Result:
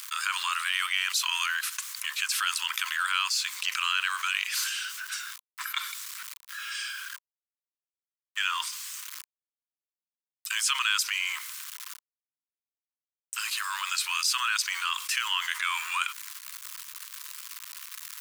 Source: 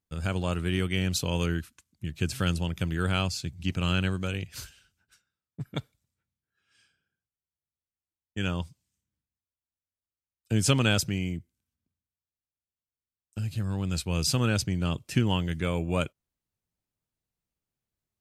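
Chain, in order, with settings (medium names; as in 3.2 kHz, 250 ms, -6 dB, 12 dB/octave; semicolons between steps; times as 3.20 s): companding laws mixed up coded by mu; steep high-pass 1 kHz 96 dB/octave; level flattener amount 70%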